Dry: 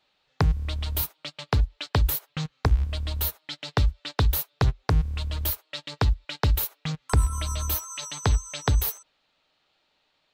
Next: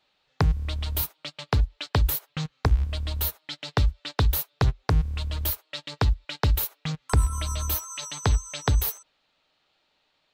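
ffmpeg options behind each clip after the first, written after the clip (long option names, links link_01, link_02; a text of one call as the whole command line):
ffmpeg -i in.wav -af anull out.wav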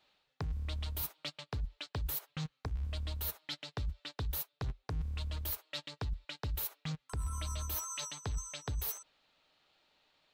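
ffmpeg -i in.wav -af "areverse,acompressor=threshold=-33dB:ratio=5,areverse,asoftclip=type=tanh:threshold=-26dB,volume=-1.5dB" out.wav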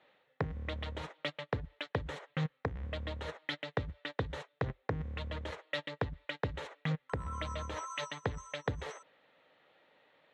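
ffmpeg -i in.wav -af "highpass=130,equalizer=frequency=510:width_type=q:width=4:gain=9,equalizer=frequency=1900:width_type=q:width=4:gain=9,equalizer=frequency=3400:width_type=q:width=4:gain=3,equalizer=frequency=4800:width_type=q:width=4:gain=-6,equalizer=frequency=7100:width_type=q:width=4:gain=4,lowpass=frequency=8900:width=0.5412,lowpass=frequency=8900:width=1.3066,adynamicsmooth=sensitivity=1:basefreq=2400,volume=7dB" out.wav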